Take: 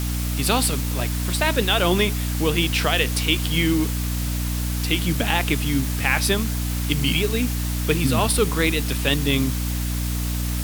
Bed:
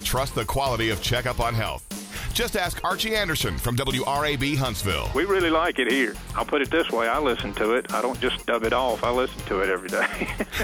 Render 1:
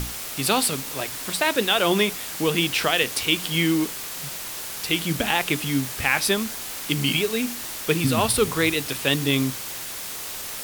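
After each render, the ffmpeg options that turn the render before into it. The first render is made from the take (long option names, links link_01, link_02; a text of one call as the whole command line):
ffmpeg -i in.wav -af "bandreject=frequency=60:width_type=h:width=6,bandreject=frequency=120:width_type=h:width=6,bandreject=frequency=180:width_type=h:width=6,bandreject=frequency=240:width_type=h:width=6,bandreject=frequency=300:width_type=h:width=6" out.wav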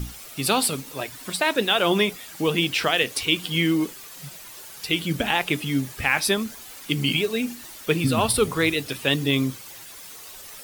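ffmpeg -i in.wav -af "afftdn=noise_reduction=11:noise_floor=-34" out.wav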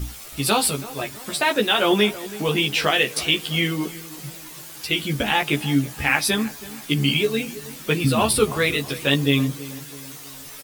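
ffmpeg -i in.wav -filter_complex "[0:a]asplit=2[link_01][link_02];[link_02]adelay=14,volume=-2.5dB[link_03];[link_01][link_03]amix=inputs=2:normalize=0,asplit=2[link_04][link_05];[link_05]adelay=326,lowpass=frequency=1600:poles=1,volume=-16dB,asplit=2[link_06][link_07];[link_07]adelay=326,lowpass=frequency=1600:poles=1,volume=0.5,asplit=2[link_08][link_09];[link_09]adelay=326,lowpass=frequency=1600:poles=1,volume=0.5,asplit=2[link_10][link_11];[link_11]adelay=326,lowpass=frequency=1600:poles=1,volume=0.5[link_12];[link_04][link_06][link_08][link_10][link_12]amix=inputs=5:normalize=0" out.wav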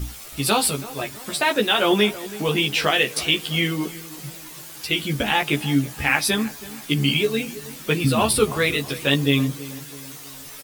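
ffmpeg -i in.wav -af anull out.wav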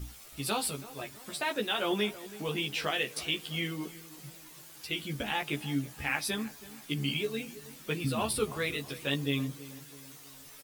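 ffmpeg -i in.wav -af "volume=-12dB" out.wav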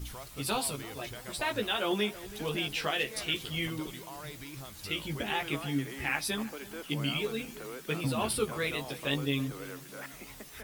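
ffmpeg -i in.wav -i bed.wav -filter_complex "[1:a]volume=-21.5dB[link_01];[0:a][link_01]amix=inputs=2:normalize=0" out.wav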